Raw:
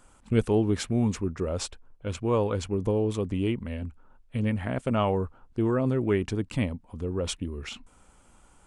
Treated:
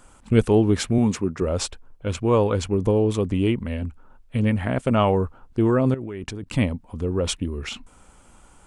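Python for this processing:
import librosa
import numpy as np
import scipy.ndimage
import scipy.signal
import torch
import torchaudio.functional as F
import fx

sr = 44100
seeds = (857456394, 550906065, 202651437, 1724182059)

y = fx.highpass(x, sr, hz=120.0, slope=12, at=(0.98, 1.42))
y = fx.level_steps(y, sr, step_db=19, at=(5.94, 6.48))
y = y * librosa.db_to_amplitude(6.0)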